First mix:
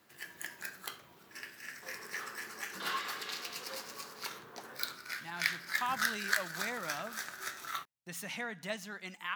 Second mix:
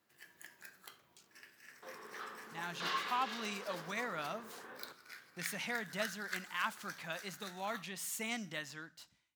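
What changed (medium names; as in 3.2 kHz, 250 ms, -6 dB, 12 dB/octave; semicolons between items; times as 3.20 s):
speech: entry -2.70 s; first sound -11.5 dB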